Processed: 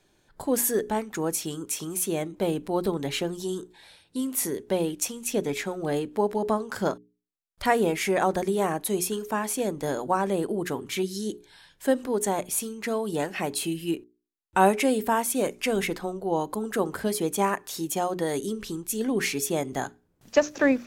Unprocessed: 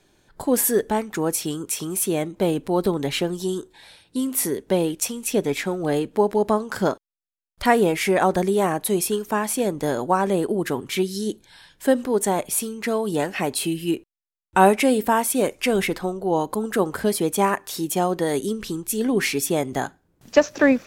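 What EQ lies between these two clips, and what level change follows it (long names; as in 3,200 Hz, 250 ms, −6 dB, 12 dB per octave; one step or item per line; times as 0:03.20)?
mains-hum notches 60/120/180/240/300/360/420 Hz
dynamic equaliser 6,600 Hz, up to +5 dB, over −49 dBFS, Q 6.7
−4.5 dB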